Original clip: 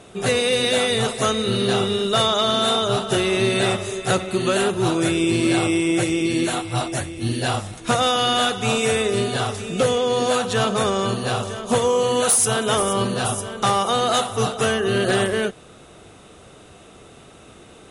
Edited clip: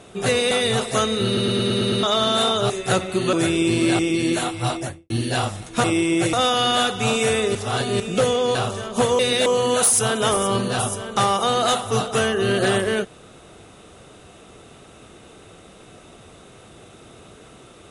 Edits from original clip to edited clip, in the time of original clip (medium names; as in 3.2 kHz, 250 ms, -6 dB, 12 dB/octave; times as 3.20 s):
0.51–0.78 s: move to 11.92 s
1.53 s: stutter in place 0.11 s, 7 plays
2.97–3.89 s: delete
4.52–4.95 s: delete
5.61–6.10 s: move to 7.95 s
6.84–7.21 s: studio fade out
9.17–9.62 s: reverse
10.17–11.28 s: delete